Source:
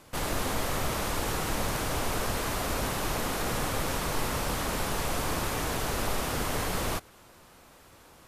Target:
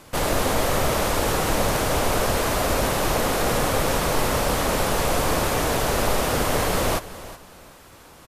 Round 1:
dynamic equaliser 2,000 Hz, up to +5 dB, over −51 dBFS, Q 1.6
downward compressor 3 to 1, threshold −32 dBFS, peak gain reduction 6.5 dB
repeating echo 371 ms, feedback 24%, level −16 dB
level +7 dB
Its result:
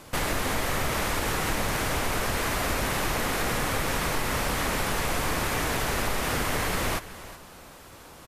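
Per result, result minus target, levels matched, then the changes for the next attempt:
downward compressor: peak gain reduction +6.5 dB; 500 Hz band −3.5 dB
remove: downward compressor 3 to 1, threshold −32 dBFS, peak gain reduction 6.5 dB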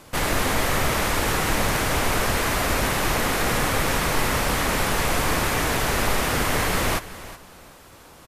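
500 Hz band −3.5 dB
change: dynamic equaliser 560 Hz, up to +5 dB, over −51 dBFS, Q 1.6

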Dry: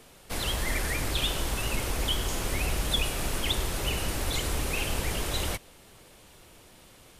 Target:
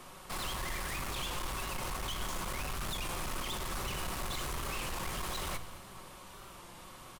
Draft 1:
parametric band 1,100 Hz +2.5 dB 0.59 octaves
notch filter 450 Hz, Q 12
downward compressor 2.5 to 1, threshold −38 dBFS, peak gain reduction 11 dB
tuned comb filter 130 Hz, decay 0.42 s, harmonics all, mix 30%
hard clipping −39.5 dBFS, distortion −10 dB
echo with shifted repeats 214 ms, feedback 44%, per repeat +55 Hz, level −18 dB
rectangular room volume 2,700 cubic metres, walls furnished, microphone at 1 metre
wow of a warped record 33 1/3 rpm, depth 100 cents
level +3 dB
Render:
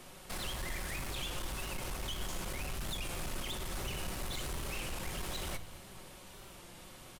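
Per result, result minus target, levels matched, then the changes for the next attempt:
downward compressor: peak gain reduction +5 dB; 1,000 Hz band −4.0 dB
change: downward compressor 2.5 to 1, threshold −29 dBFS, peak gain reduction 5.5 dB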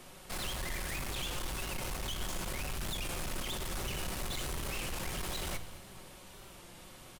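1,000 Hz band −4.0 dB
change: parametric band 1,100 Hz +11.5 dB 0.59 octaves

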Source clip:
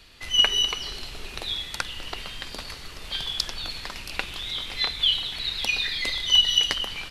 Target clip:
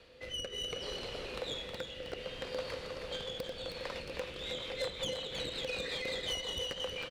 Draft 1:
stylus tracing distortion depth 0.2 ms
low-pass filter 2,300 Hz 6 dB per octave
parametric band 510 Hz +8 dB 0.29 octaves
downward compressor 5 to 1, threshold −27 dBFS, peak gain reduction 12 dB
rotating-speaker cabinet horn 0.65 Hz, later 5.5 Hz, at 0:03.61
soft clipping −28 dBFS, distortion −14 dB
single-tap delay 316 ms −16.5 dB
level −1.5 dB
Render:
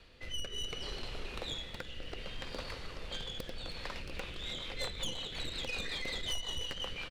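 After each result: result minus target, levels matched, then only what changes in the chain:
500 Hz band −6.5 dB; echo-to-direct −9.5 dB; 125 Hz band +4.0 dB
change: parametric band 510 Hz +20 dB 0.29 octaves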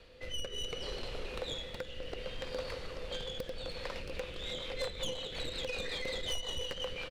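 echo-to-direct −9.5 dB; 125 Hz band +3.0 dB
change: single-tap delay 316 ms −7 dB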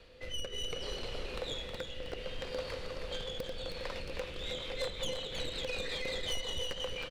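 125 Hz band +3.0 dB
add after downward compressor: high-pass filter 100 Hz 6 dB per octave

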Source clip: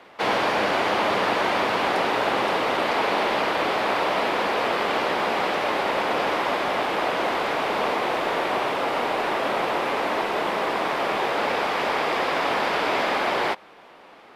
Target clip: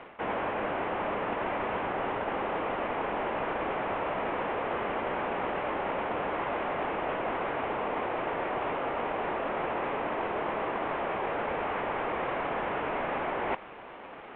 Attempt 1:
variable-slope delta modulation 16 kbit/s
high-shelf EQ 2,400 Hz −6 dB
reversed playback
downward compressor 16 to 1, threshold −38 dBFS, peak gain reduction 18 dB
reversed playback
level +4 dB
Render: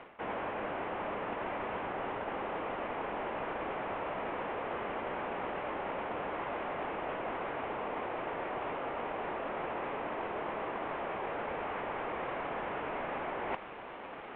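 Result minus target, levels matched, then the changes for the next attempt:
downward compressor: peak gain reduction +5.5 dB
change: downward compressor 16 to 1, threshold −32 dBFS, peak gain reduction 12 dB

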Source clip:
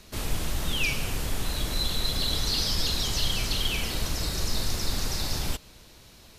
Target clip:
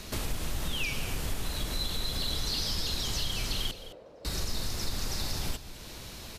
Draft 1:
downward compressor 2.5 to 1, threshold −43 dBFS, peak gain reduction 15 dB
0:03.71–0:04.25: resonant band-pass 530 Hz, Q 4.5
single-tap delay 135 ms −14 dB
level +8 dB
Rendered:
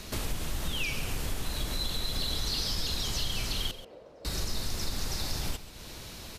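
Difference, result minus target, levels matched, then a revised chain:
echo 78 ms early
downward compressor 2.5 to 1, threshold −43 dBFS, peak gain reduction 15 dB
0:03.71–0:04.25: resonant band-pass 530 Hz, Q 4.5
single-tap delay 213 ms −14 dB
level +8 dB

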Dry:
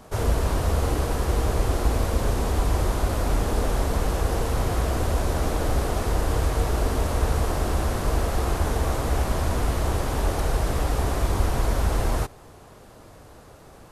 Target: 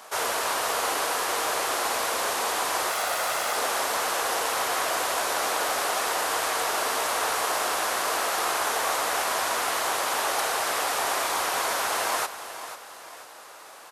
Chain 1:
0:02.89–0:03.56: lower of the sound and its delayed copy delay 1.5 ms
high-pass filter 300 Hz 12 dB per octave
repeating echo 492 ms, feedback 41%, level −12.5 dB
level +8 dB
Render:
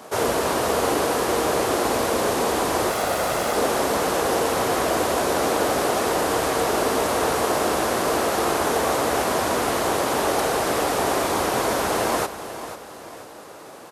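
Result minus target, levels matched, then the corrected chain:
250 Hz band +13.0 dB
0:02.89–0:03.56: lower of the sound and its delayed copy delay 1.5 ms
high-pass filter 930 Hz 12 dB per octave
repeating echo 492 ms, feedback 41%, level −12.5 dB
level +8 dB

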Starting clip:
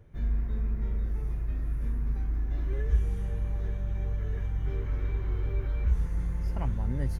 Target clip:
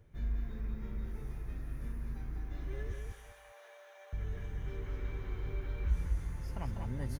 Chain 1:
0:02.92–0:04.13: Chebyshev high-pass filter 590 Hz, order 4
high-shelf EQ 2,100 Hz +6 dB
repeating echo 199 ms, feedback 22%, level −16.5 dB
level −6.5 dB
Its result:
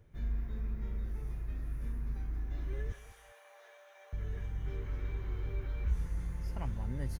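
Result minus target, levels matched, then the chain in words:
echo-to-direct −11.5 dB
0:02.92–0:04.13: Chebyshev high-pass filter 590 Hz, order 4
high-shelf EQ 2,100 Hz +6 dB
repeating echo 199 ms, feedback 22%, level −5 dB
level −6.5 dB

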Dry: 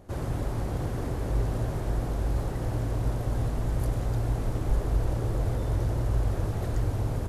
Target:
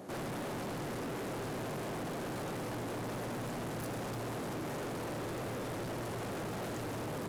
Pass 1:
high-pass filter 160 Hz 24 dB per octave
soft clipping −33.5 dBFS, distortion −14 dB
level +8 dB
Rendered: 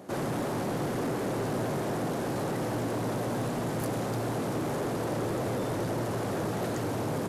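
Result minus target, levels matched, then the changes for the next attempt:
soft clipping: distortion −8 dB
change: soft clipping −45.5 dBFS, distortion −6 dB

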